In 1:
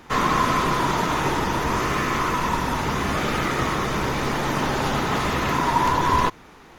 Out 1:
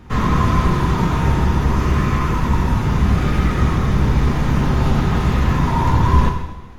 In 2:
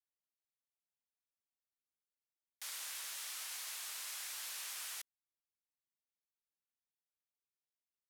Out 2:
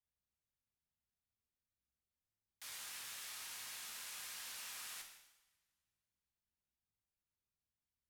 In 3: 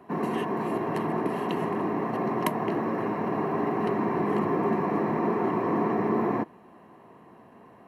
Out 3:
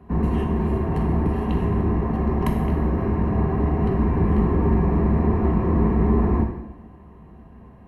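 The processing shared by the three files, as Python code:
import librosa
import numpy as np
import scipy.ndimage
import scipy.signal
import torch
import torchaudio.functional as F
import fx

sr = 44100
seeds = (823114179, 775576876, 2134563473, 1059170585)

y = fx.octave_divider(x, sr, octaves=2, level_db=-5.0)
y = fx.bass_treble(y, sr, bass_db=15, treble_db=-3)
y = fx.rev_double_slope(y, sr, seeds[0], early_s=0.93, late_s=2.5, knee_db=-24, drr_db=2.0)
y = y * librosa.db_to_amplitude(-4.0)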